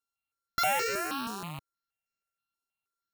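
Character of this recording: a buzz of ramps at a fixed pitch in blocks of 32 samples; notches that jump at a steady rate 6.3 Hz 570–3400 Hz

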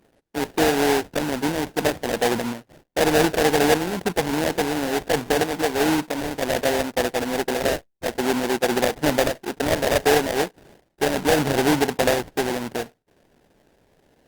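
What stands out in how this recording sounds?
aliases and images of a low sample rate 1.2 kHz, jitter 20%; Opus

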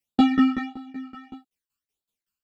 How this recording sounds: phasing stages 12, 1.6 Hz, lowest notch 620–2100 Hz; tremolo saw down 5.3 Hz, depth 95%; a shimmering, thickened sound

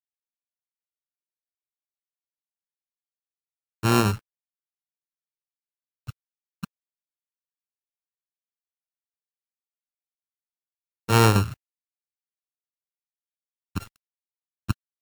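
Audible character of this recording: a buzz of ramps at a fixed pitch in blocks of 32 samples; random-step tremolo; a quantiser's noise floor 8-bit, dither none; Vorbis

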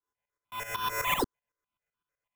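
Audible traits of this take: a buzz of ramps at a fixed pitch in blocks of 8 samples; tremolo saw up 7.9 Hz, depth 80%; aliases and images of a low sample rate 4.5 kHz, jitter 0%; notches that jump at a steady rate 6.7 Hz 640–2100 Hz

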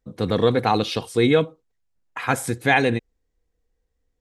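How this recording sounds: noise floor -75 dBFS; spectral tilt -4.0 dB/octave

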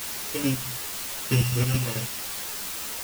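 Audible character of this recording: a buzz of ramps at a fixed pitch in blocks of 16 samples; chopped level 4.6 Hz, depth 65%, duty 50%; a quantiser's noise floor 6-bit, dither triangular; a shimmering, thickened sound

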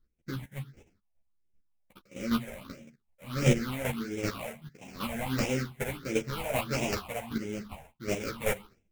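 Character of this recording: aliases and images of a low sample rate 1.8 kHz, jitter 20%; phasing stages 6, 1.5 Hz, lowest notch 310–1200 Hz; chopped level 2.6 Hz, depth 65%, duty 15%; a shimmering, thickened sound

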